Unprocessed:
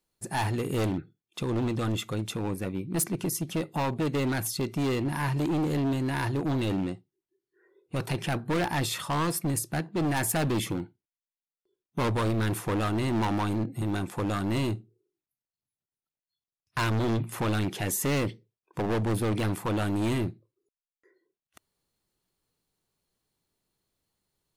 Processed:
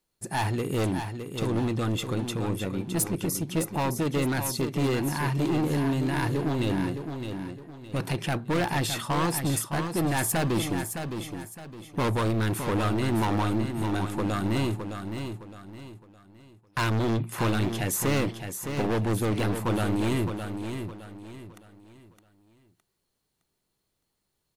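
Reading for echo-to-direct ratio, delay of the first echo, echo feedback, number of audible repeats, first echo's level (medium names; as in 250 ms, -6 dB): -7.0 dB, 613 ms, 34%, 3, -7.5 dB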